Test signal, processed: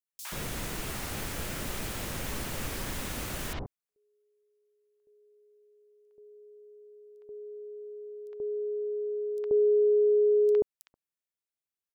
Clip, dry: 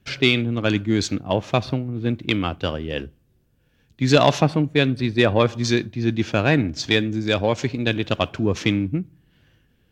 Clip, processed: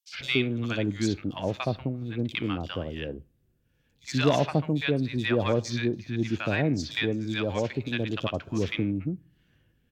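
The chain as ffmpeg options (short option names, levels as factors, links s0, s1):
-filter_complex "[0:a]acrossover=split=870|4500[s0][s1][s2];[s1]adelay=60[s3];[s0]adelay=130[s4];[s4][s3][s2]amix=inputs=3:normalize=0,volume=0.473"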